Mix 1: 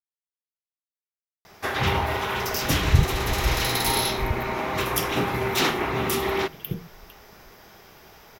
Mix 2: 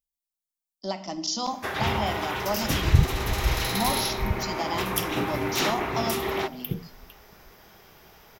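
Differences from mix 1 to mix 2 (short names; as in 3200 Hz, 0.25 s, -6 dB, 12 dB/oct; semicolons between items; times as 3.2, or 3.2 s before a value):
speech: unmuted; first sound -3.5 dB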